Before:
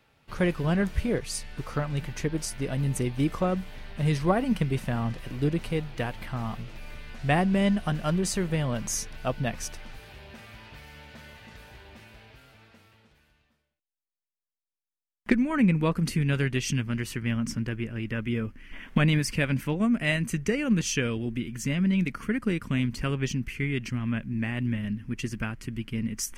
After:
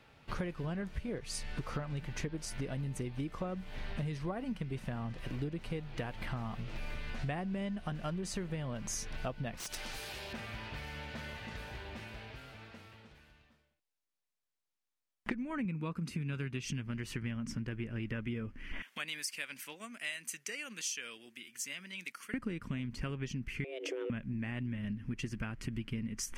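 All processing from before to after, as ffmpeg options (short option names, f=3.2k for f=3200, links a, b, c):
-filter_complex "[0:a]asettb=1/sr,asplit=3[a][b][c];[a]atrim=end=9.574[d];[b]atrim=start=9.57:end=10.33,asetpts=PTS-STARTPTS,afade=t=in:d=0.004:c=qsin,afade=t=out:st=0.756:d=0.004:c=qsin,bass=f=250:g=-8,treble=f=4k:g=13,acompressor=threshold=-33dB:ratio=4:attack=3.2:release=140:knee=1:detection=peak,aeval=exprs='(mod(28.2*val(0)+1,2)-1)/28.2':c=same[e];[c]atrim=start=10.326[f];[d][e]acrossfade=d=0.004:c1=hsin:c2=qsin[g];[g][f]acrossfade=d=0.004:c1=qsin:c2=hsin,asettb=1/sr,asplit=3[h][i][j];[h]atrim=end=15.654[k];[i]atrim=start=15.65:end=16.65,asetpts=PTS-STARTPTS,afade=t=in:d=0.004:c=qsin,afade=t=out:st=0.996:d=0.004:c=qsin,highpass=89,aecho=1:1:0.8:0.35,atrim=end_sample=44100[l];[j]atrim=start=16.646[m];[k][l]acrossfade=d=0.004:c1=hsin:c2=qsin[n];[n][m]acrossfade=d=0.004:c1=qsin:c2=hsin,asettb=1/sr,asplit=3[o][p][q];[o]atrim=end=18.824[r];[p]atrim=start=18.82:end=22.34,asetpts=PTS-STARTPTS,afade=t=in:d=0.004:c=qsin,afade=t=out:st=3.516:d=0.004:c=qsin,highpass=180,aderivative[s];[q]atrim=start=22.336[t];[r][s]acrossfade=d=0.004:c1=hsin:c2=qsin[u];[u][t]acrossfade=d=0.004:c1=qsin:c2=hsin,asettb=1/sr,asplit=3[v][w][x];[v]atrim=end=23.644[y];[w]atrim=start=23.64:end=24.1,asetpts=PTS-STARTPTS,afade=t=in:d=0.004:c=qsin,afade=t=out:st=0.456:d=0.004:c=qsin,acompressor=threshold=-33dB:ratio=10:attack=3.2:release=140:knee=1:detection=peak,afreqshift=260[z];[x]atrim=start=24.096[aa];[y][z]acrossfade=d=0.004:c1=hsin:c2=qsin[ab];[ab][aa]acrossfade=d=0.004:c1=qsin:c2=hsin,highshelf=f=9.5k:g=-10.5,acompressor=threshold=-38dB:ratio=12,volume=3.5dB"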